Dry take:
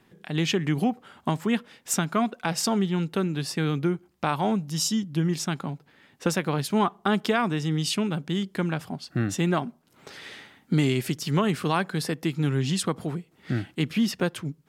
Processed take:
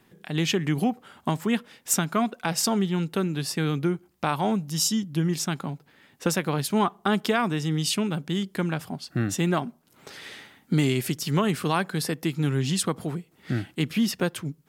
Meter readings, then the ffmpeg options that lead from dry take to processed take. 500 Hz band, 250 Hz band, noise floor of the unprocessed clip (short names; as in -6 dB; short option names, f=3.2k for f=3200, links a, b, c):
0.0 dB, 0.0 dB, -62 dBFS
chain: -af "highshelf=f=9.4k:g=8.5"